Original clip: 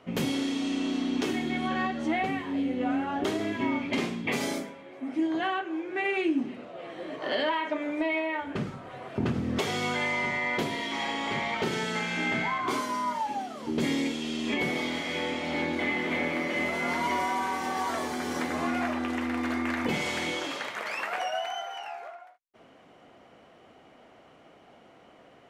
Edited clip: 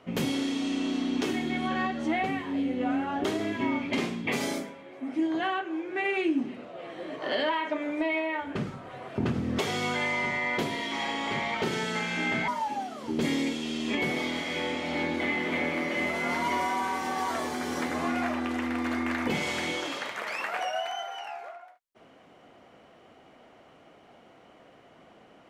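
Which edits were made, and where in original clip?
12.48–13.07 s: delete

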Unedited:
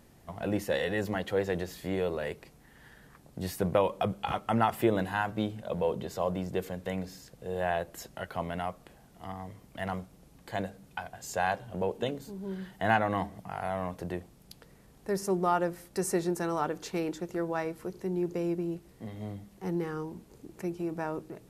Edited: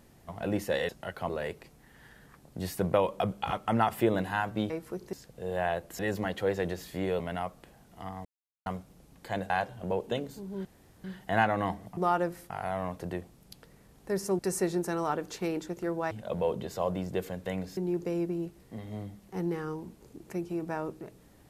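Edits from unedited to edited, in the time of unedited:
0.89–2.10 s: swap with 8.03–8.43 s
5.51–7.17 s: swap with 17.63–18.06 s
9.48–9.89 s: mute
10.73–11.41 s: delete
12.56 s: insert room tone 0.39 s
15.38–15.91 s: move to 13.49 s

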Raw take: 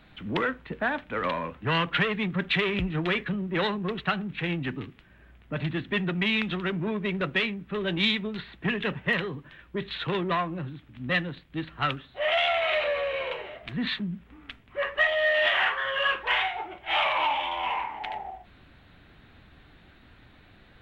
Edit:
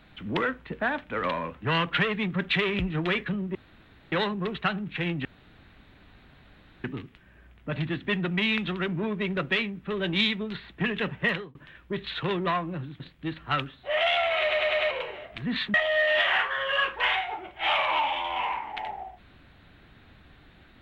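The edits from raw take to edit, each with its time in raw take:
3.55 s: insert room tone 0.57 s
4.68 s: insert room tone 1.59 s
9.14–9.39 s: fade out
10.84–11.31 s: delete
12.72 s: stutter in place 0.10 s, 5 plays
14.05–15.01 s: delete

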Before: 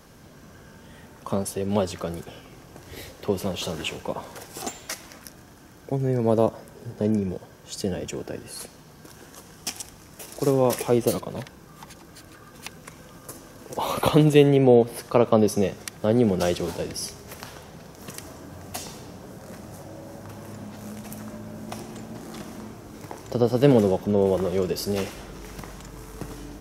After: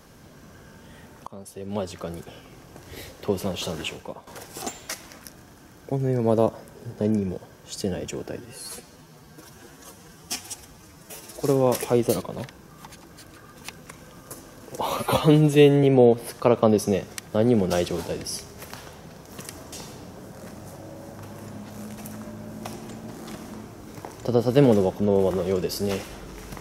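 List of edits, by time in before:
1.27–2.87 s: fade in equal-power, from -22 dB
3.79–4.27 s: fade out, to -14.5 dB
8.38–10.42 s: stretch 1.5×
13.96–14.53 s: stretch 1.5×
18.42–18.79 s: delete

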